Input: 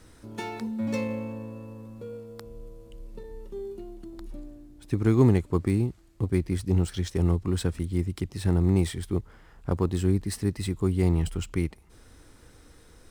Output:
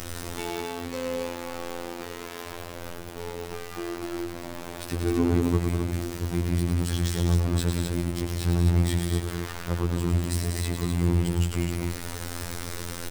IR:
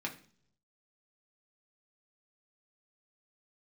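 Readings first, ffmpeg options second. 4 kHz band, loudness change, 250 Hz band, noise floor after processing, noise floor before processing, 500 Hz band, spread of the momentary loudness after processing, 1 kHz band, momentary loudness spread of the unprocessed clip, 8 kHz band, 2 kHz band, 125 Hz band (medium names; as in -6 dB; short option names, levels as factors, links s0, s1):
+6.5 dB, -1.0 dB, -1.0 dB, -38 dBFS, -54 dBFS, -1.0 dB, 13 LU, +4.5 dB, 20 LU, +7.0 dB, +5.5 dB, +0.5 dB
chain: -af "aeval=exprs='val(0)+0.5*0.0562*sgn(val(0))':c=same,aecho=1:1:105|195.3|256.6:0.501|0.447|0.562,afftfilt=real='hypot(re,im)*cos(PI*b)':imag='0':win_size=2048:overlap=0.75,volume=0.75"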